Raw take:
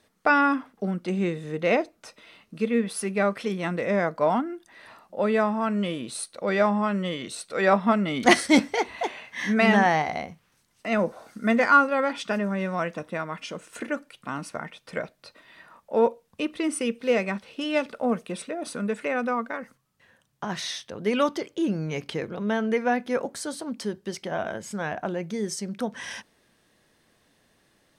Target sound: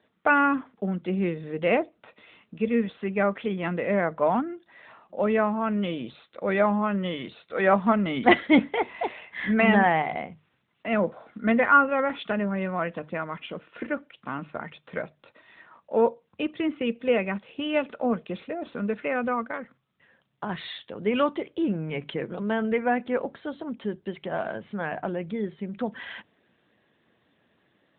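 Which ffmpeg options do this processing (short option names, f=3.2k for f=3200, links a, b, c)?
-af "bandreject=f=50:t=h:w=6,bandreject=f=100:t=h:w=6,bandreject=f=150:t=h:w=6" -ar 8000 -c:a libopencore_amrnb -b:a 12200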